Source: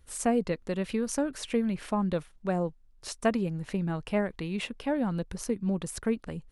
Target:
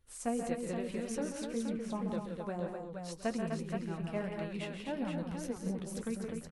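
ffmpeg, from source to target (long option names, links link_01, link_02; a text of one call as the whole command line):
ffmpeg -i in.wav -filter_complex "[0:a]asettb=1/sr,asplit=3[link_01][link_02][link_03];[link_01]atrim=end=1.444[link_04];[link_02]atrim=start=1.44:end=2.04,asetpts=PTS-STARTPTS,afade=type=in:duration=0.004:curve=qsin,afade=type=out:start_time=0.596:duration=0.004:curve=qsin,highshelf=frequency=2300:gain=-11.5[link_05];[link_03]atrim=start=2.036[link_06];[link_04][link_05]acrossfade=duration=0.004:curve1=hsin:curve2=qsin[link_07];[link_07][link_06]acrossfade=duration=0.004:curve1=qsin:curve2=hsin,aecho=1:1:134|170|251|473|717|814:0.355|0.447|0.501|0.531|0.133|0.126,flanger=delay=8:depth=4.8:regen=-40:speed=1.8:shape=sinusoidal,volume=-6dB" out.wav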